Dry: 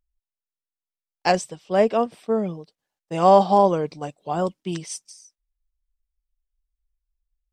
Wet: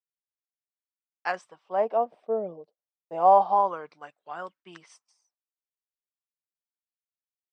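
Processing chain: gate with hold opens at -47 dBFS; LFO band-pass sine 0.29 Hz 560–1600 Hz

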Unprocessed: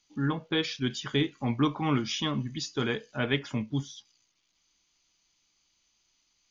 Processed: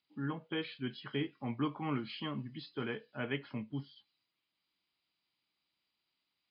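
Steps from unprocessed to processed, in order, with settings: nonlinear frequency compression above 2800 Hz 1.5:1; BPF 110–3700 Hz; gain -8.5 dB

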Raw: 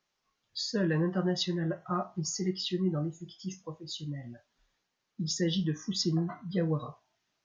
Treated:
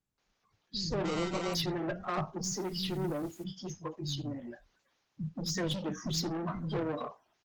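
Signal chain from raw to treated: bin magnitudes rounded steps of 30 dB; high shelf 2500 Hz -5 dB; in parallel at -2 dB: limiter -24 dBFS, peak gain reduction 7 dB; 0.87–1.37 on the sum: sample-rate reducer 1700 Hz, jitter 0%; soft clip -30.5 dBFS, distortion -7 dB; 2.27–3.26 requantised 10-bit, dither triangular; bands offset in time lows, highs 0.18 s, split 200 Hz; gain +2 dB; Opus 16 kbps 48000 Hz

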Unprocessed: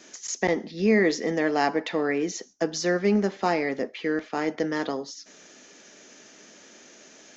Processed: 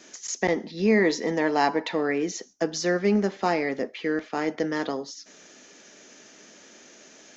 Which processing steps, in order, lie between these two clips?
0.67–1.94 small resonant body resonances 940/4000 Hz, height 12 dB

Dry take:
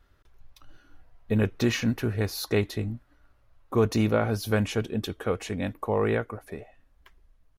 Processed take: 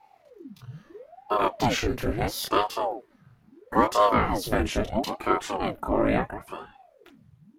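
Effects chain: chorus voices 2, 0.28 Hz, delay 27 ms, depth 4.8 ms; ring modulator with a swept carrier 480 Hz, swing 75%, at 0.75 Hz; gain +8 dB

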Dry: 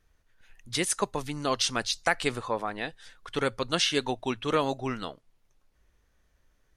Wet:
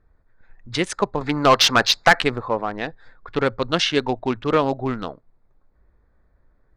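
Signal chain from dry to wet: Wiener smoothing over 15 samples; air absorption 110 m; 1.21–2.22 overdrive pedal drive 19 dB, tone 5000 Hz, clips at -10.5 dBFS; gain +8 dB

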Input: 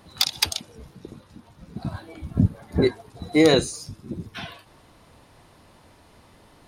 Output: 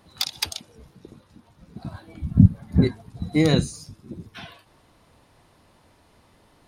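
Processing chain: 2.07–3.84 resonant low shelf 280 Hz +9.5 dB, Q 1.5; gain -4.5 dB

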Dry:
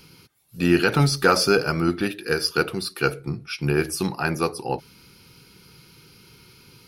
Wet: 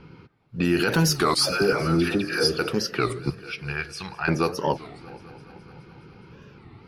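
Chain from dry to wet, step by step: 3.3–4.28 passive tone stack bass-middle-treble 10-0-10; low-pass opened by the level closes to 1400 Hz, open at -17.5 dBFS; in parallel at -2 dB: compressor, threshold -28 dBFS, peak gain reduction 15 dB; on the sum: limiter -12 dBFS, peak gain reduction 8 dB; 1.35–2.59 dispersion lows, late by 0.145 s, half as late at 1000 Hz; on a send: multi-head echo 0.209 s, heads first and second, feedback 62%, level -23 dB; on the sum: record warp 33 1/3 rpm, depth 250 cents; gain +1 dB

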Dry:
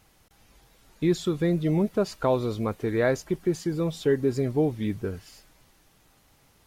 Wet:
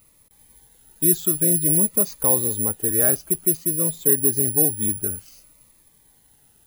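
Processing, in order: 3.57–4.24 air absorption 130 m; careless resampling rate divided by 4×, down filtered, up zero stuff; cascading phaser falling 0.54 Hz; gain -1 dB

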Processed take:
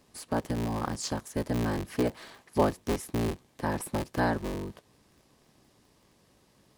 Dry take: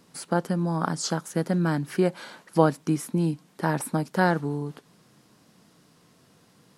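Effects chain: cycle switcher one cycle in 3, inverted; notch 1400 Hz, Q 8; gain -5 dB

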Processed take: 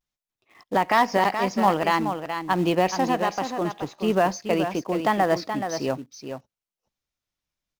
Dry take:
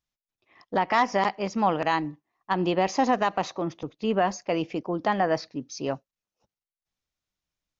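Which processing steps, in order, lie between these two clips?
vibrato 0.64 Hz 50 cents; 2.96–3.59 resonator 75 Hz, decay 0.79 s, harmonics all, mix 40%; echo 0.426 s -8 dB; in parallel at -9 dB: companded quantiser 4-bit

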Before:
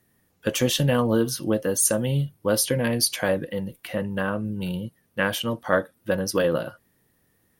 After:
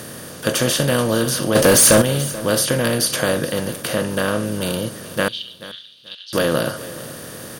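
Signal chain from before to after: per-bin compression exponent 0.4; 1.55–2.02 sample leveller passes 3; 5.28–6.33 Butterworth band-pass 3500 Hz, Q 2.9; on a send: feedback echo 0.433 s, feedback 24%, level -17 dB; on the sum: gain -1 dB

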